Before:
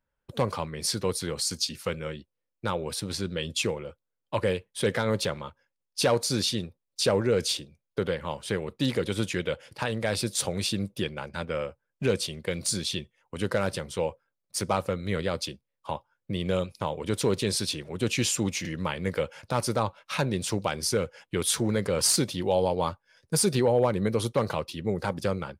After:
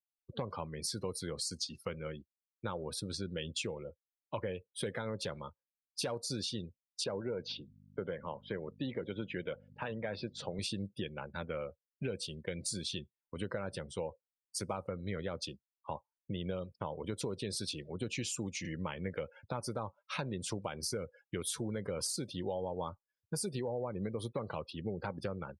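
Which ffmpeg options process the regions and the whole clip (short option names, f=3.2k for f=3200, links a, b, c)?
-filter_complex "[0:a]asettb=1/sr,asplit=3[a][b][c];[a]atrim=end=7.044[d];[b]atrim=start=7.04:end=10.59,asetpts=PTS-STARTPTS,afade=t=in:d=0.004:c=qsin,afade=t=out:st=3.546:d=0.004:c=qsin,aeval=exprs='if(lt(val(0),0),0.708*val(0),val(0))':c=same,aeval=exprs='val(0)+0.00631*(sin(2*PI*50*n/s)+sin(2*PI*2*50*n/s)/2+sin(2*PI*3*50*n/s)/3+sin(2*PI*4*50*n/s)/4+sin(2*PI*5*50*n/s)/5)':c=same,highpass=120,lowpass=3.7k[e];[c]atrim=start=10.586[f];[d][e]acrossfade=d=0.004:c1=hsin:c2=qsin[g];[g][f]acrossfade=d=0.004:c1=qsin:c2=hsin,acompressor=threshold=-27dB:ratio=12,afftdn=nr=31:nf=-42,volume=-6dB"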